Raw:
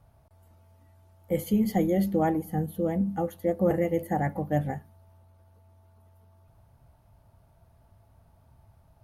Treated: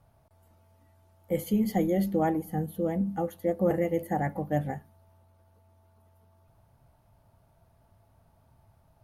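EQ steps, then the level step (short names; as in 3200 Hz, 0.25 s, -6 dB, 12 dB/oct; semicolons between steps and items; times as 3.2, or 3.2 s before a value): bell 61 Hz -5.5 dB 1.6 oct; -1.0 dB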